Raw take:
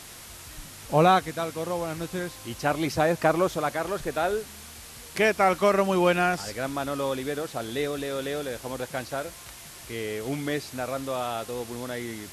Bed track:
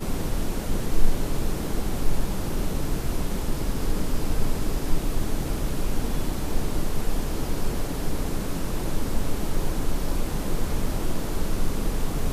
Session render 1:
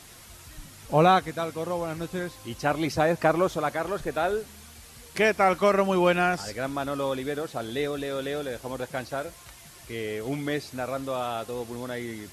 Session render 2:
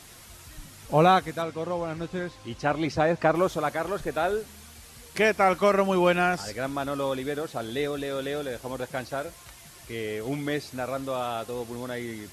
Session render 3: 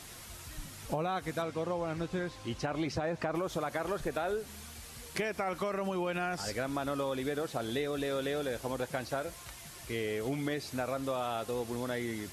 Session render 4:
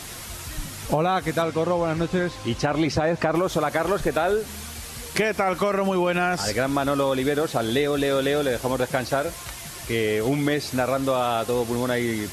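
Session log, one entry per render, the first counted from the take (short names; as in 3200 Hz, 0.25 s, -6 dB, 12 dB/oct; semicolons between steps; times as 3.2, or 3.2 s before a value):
denoiser 6 dB, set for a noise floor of -45 dBFS
1.42–3.35 air absorption 66 m
limiter -18.5 dBFS, peak gain reduction 9.5 dB; compressor, threshold -30 dBFS, peak gain reduction 7.5 dB
gain +11.5 dB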